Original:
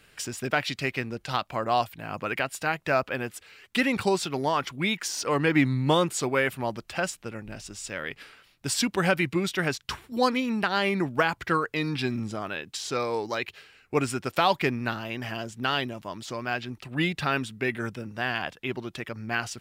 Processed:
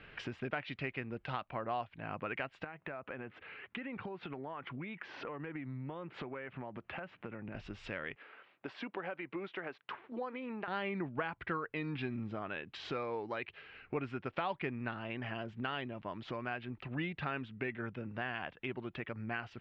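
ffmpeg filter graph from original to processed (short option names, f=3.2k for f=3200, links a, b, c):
-filter_complex "[0:a]asettb=1/sr,asplit=3[a][b][c];[a]atrim=end=2.644[d];[b]atrim=start=2.64:end=7.55,asetpts=PTS-STARTPTS,afade=t=in:d=0.004:c=qsin,afade=t=out:st=4.906:d=0.004:c=qsin,highpass=100,lowpass=2.6k,acompressor=threshold=-38dB:ratio=5:attack=3.2:release=140:knee=1:detection=peak[e];[c]atrim=start=7.546[f];[d][e]acrossfade=d=0.004:c1=hsin:c2=qsin[g];[g][f]acrossfade=d=0.004:c1=qsin:c2=hsin,asettb=1/sr,asplit=3[h][i][j];[h]atrim=end=8.164[k];[i]atrim=start=8.16:end=10.68,asetpts=PTS-STARTPTS,afade=t=in:d=0.004:c=qsin,afade=t=out:st=2.516:d=0.004:c=qsin,highpass=400,lowpass=6.6k,acompressor=threshold=-31dB:ratio=2:attack=3.2:release=140:knee=1:detection=peak,highshelf=f=2.1k:g=-11.5[l];[j]atrim=start=10.676[m];[k][l]acrossfade=d=0.004:c1=hsin:c2=qsin[n];[n][m]acrossfade=d=0.004:c1=qsin:c2=hsin,lowpass=f=2.9k:w=0.5412,lowpass=f=2.9k:w=1.3066,acompressor=threshold=-47dB:ratio=2.5,volume=4dB"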